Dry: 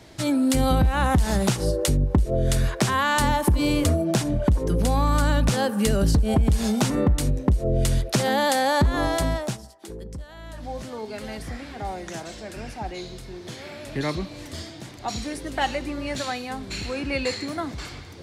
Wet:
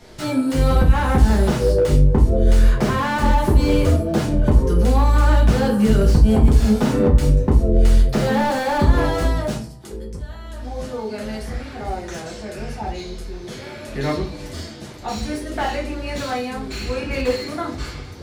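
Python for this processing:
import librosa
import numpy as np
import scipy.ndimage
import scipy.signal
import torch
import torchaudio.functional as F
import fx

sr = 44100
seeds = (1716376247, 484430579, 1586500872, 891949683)

y = fx.room_shoebox(x, sr, seeds[0], volume_m3=30.0, walls='mixed', distance_m=0.78)
y = fx.slew_limit(y, sr, full_power_hz=140.0)
y = F.gain(torch.from_numpy(y), -1.5).numpy()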